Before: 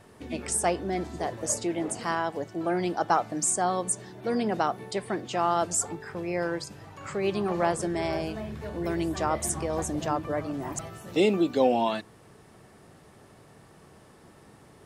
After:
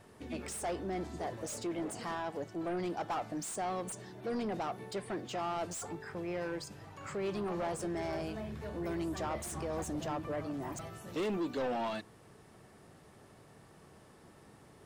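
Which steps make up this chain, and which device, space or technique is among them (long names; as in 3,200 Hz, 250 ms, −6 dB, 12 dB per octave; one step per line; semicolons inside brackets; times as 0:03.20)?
saturation between pre-emphasis and de-emphasis (high-shelf EQ 3,300 Hz +11 dB; soft clipping −26 dBFS, distortion −5 dB; high-shelf EQ 3,300 Hz −11 dB)
level −4.5 dB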